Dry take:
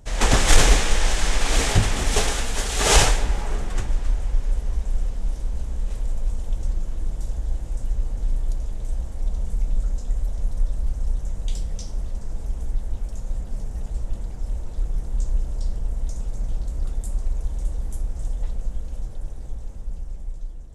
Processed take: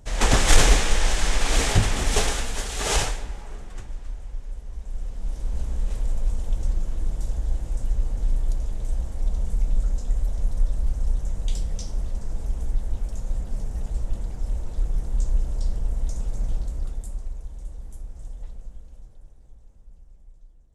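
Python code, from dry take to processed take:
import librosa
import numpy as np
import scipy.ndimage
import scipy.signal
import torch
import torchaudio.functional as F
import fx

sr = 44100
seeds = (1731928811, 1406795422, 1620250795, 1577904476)

y = fx.gain(x, sr, db=fx.line((2.28, -1.0), (3.4, -11.5), (4.68, -11.5), (5.6, 0.5), (16.52, 0.5), (17.47, -10.0), (18.44, -10.0), (19.38, -17.0)))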